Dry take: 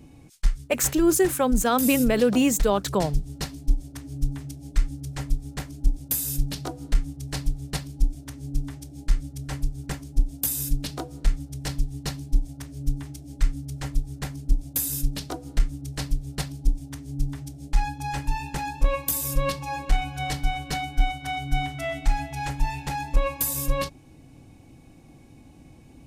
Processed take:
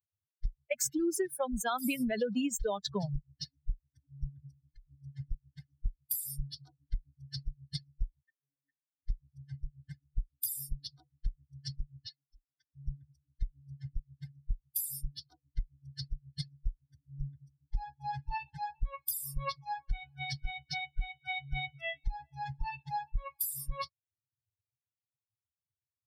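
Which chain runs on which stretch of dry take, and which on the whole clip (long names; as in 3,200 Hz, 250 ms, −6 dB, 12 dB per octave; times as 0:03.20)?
0:04.29–0:04.87: low-shelf EQ 250 Hz +2 dB + downward compressor 3 to 1, threshold −29 dBFS
0:08.22–0:09.03: comb filter 7.2 ms, depth 93% + leveller curve on the samples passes 2 + formant filter e
0:12.06–0:12.75: three-way crossover with the lows and the highs turned down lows −13 dB, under 320 Hz, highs −21 dB, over 6,800 Hz + one half of a high-frequency compander encoder only
whole clip: spectral dynamics exaggerated over time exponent 3; dynamic equaliser 4,700 Hz, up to +4 dB, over −52 dBFS, Q 0.92; downward compressor, threshold −29 dBFS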